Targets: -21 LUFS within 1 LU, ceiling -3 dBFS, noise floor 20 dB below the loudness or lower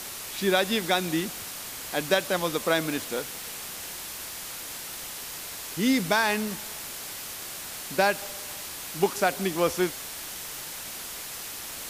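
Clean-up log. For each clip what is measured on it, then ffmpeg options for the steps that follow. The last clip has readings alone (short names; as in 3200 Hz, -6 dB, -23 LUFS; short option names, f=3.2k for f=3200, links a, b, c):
noise floor -38 dBFS; noise floor target -49 dBFS; loudness -28.5 LUFS; peak -7.5 dBFS; loudness target -21.0 LUFS
-> -af "afftdn=nr=11:nf=-38"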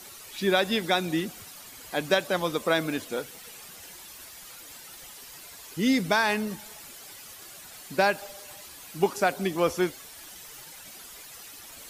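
noise floor -46 dBFS; noise floor target -47 dBFS
-> -af "afftdn=nr=6:nf=-46"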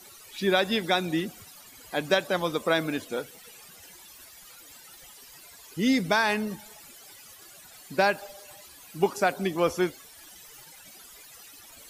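noise floor -50 dBFS; loudness -27.0 LUFS; peak -8.0 dBFS; loudness target -21.0 LUFS
-> -af "volume=6dB,alimiter=limit=-3dB:level=0:latency=1"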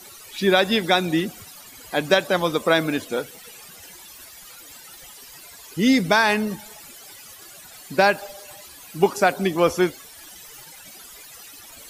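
loudness -21.0 LUFS; peak -3.0 dBFS; noise floor -44 dBFS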